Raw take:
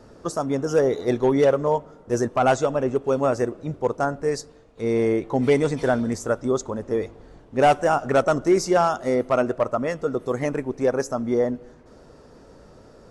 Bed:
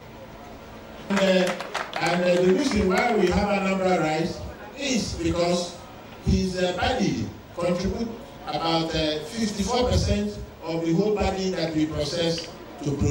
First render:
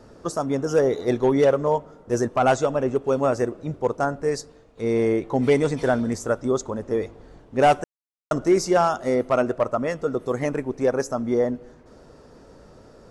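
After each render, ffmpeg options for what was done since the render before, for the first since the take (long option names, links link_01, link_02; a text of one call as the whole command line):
ffmpeg -i in.wav -filter_complex "[0:a]asplit=3[link_01][link_02][link_03];[link_01]atrim=end=7.84,asetpts=PTS-STARTPTS,afade=type=out:start_time=7.836:duration=0.004:curve=hsin[link_04];[link_02]atrim=start=7.84:end=8.31,asetpts=PTS-STARTPTS,volume=0[link_05];[link_03]atrim=start=8.31,asetpts=PTS-STARTPTS,afade=type=in:duration=0.004:curve=hsin[link_06];[link_04][link_05][link_06]concat=n=3:v=0:a=1" out.wav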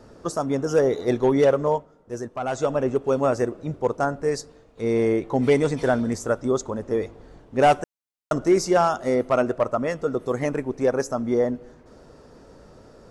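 ffmpeg -i in.wav -filter_complex "[0:a]asplit=3[link_01][link_02][link_03];[link_01]atrim=end=1.87,asetpts=PTS-STARTPTS,afade=type=out:start_time=1.65:duration=0.22:curve=qsin:silence=0.354813[link_04];[link_02]atrim=start=1.87:end=2.51,asetpts=PTS-STARTPTS,volume=-9dB[link_05];[link_03]atrim=start=2.51,asetpts=PTS-STARTPTS,afade=type=in:duration=0.22:curve=qsin:silence=0.354813[link_06];[link_04][link_05][link_06]concat=n=3:v=0:a=1" out.wav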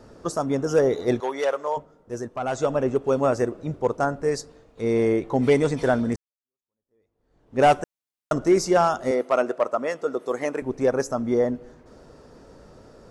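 ffmpeg -i in.wav -filter_complex "[0:a]asettb=1/sr,asplit=3[link_01][link_02][link_03];[link_01]atrim=end=1.204[link_04];[link_02]atrim=start=1.2:end=1.77,asetpts=PTS-STARTPTS,afade=type=in:duration=0.004:curve=qsin,afade=type=out:start_time=0.566:duration=0.004:curve=qsin,highpass=690[link_05];[link_03]atrim=start=1.766[link_06];[link_04][link_05]acrossfade=duration=0.004:curve1=hsin:curve2=qsin[link_07];[link_07][link_06]acrossfade=duration=0.004:curve1=qsin:curve2=hsin,asettb=1/sr,asplit=3[link_08][link_09][link_10];[link_08]atrim=end=9.114[link_11];[link_09]atrim=start=9.11:end=10.62,asetpts=PTS-STARTPTS,afade=type=in:duration=0.004:curve=qsin,afade=type=out:start_time=1.506:duration=0.004:curve=qsin,highpass=330[link_12];[link_10]atrim=start=10.616[link_13];[link_11][link_12]acrossfade=duration=0.004:curve1=hsin:curve2=qsin[link_14];[link_14][link_13]acrossfade=duration=0.004:curve1=qsin:curve2=hsin,asplit=2[link_15][link_16];[link_15]atrim=end=6.16,asetpts=PTS-STARTPTS,afade=type=out:start_time=6.156:duration=0.004:curve=hsin[link_17];[link_16]atrim=start=6.16,asetpts=PTS-STARTPTS,afade=type=in:duration=1.44:curve=exp[link_18];[link_17][link_18]concat=n=2:v=0:a=1" out.wav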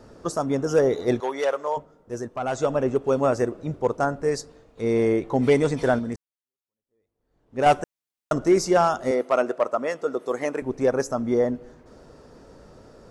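ffmpeg -i in.wav -filter_complex "[0:a]asplit=3[link_01][link_02][link_03];[link_01]atrim=end=5.992[link_04];[link_02]atrim=start=5.988:end=7.662,asetpts=PTS-STARTPTS,volume=-5dB[link_05];[link_03]atrim=start=7.658[link_06];[link_04][link_05]acrossfade=duration=0.004:curve1=hsin:curve2=hsin[link_07];[link_07][link_06]acrossfade=duration=0.004:curve1=hsin:curve2=hsin" out.wav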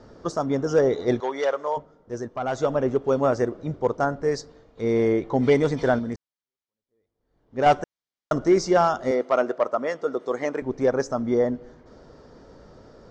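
ffmpeg -i in.wav -af "lowpass=frequency=6200:width=0.5412,lowpass=frequency=6200:width=1.3066,bandreject=frequency=2600:width=9.9" out.wav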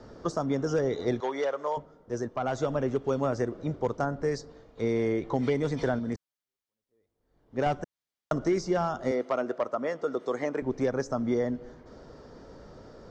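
ffmpeg -i in.wav -filter_complex "[0:a]acrossover=split=250|1500[link_01][link_02][link_03];[link_01]acompressor=threshold=-31dB:ratio=4[link_04];[link_02]acompressor=threshold=-28dB:ratio=4[link_05];[link_03]acompressor=threshold=-42dB:ratio=4[link_06];[link_04][link_05][link_06]amix=inputs=3:normalize=0" out.wav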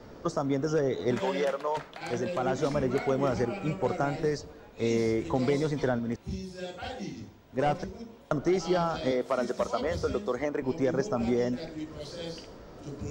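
ffmpeg -i in.wav -i bed.wav -filter_complex "[1:a]volume=-14.5dB[link_01];[0:a][link_01]amix=inputs=2:normalize=0" out.wav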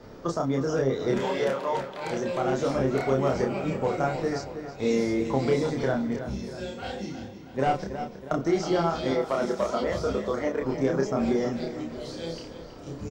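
ffmpeg -i in.wav -filter_complex "[0:a]asplit=2[link_01][link_02];[link_02]adelay=30,volume=-2.5dB[link_03];[link_01][link_03]amix=inputs=2:normalize=0,asplit=2[link_04][link_05];[link_05]adelay=321,lowpass=frequency=4100:poles=1,volume=-10dB,asplit=2[link_06][link_07];[link_07]adelay=321,lowpass=frequency=4100:poles=1,volume=0.51,asplit=2[link_08][link_09];[link_09]adelay=321,lowpass=frequency=4100:poles=1,volume=0.51,asplit=2[link_10][link_11];[link_11]adelay=321,lowpass=frequency=4100:poles=1,volume=0.51,asplit=2[link_12][link_13];[link_13]adelay=321,lowpass=frequency=4100:poles=1,volume=0.51,asplit=2[link_14][link_15];[link_15]adelay=321,lowpass=frequency=4100:poles=1,volume=0.51[link_16];[link_06][link_08][link_10][link_12][link_14][link_16]amix=inputs=6:normalize=0[link_17];[link_04][link_17]amix=inputs=2:normalize=0" out.wav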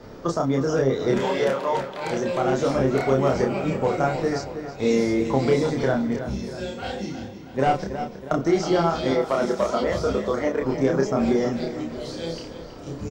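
ffmpeg -i in.wav -af "volume=4dB" out.wav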